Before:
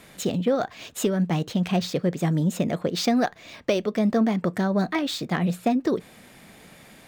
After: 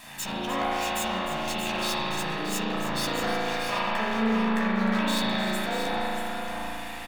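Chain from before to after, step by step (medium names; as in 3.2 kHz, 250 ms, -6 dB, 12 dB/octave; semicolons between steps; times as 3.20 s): comb filter that takes the minimum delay 1.1 ms; in parallel at +1 dB: compressor with a negative ratio -37 dBFS, ratio -1; on the sum: bass shelf 500 Hz -11 dB; doubling 14 ms -5.5 dB; de-hum 83.62 Hz, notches 28; small resonant body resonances 1.3/2.3 kHz, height 6 dB; on a send: multi-tap echo 305/629/648 ms -12/-9/-12 dB; on the sum: spring tank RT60 2.8 s, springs 36 ms, chirp 45 ms, DRR -7.5 dB; trim -7 dB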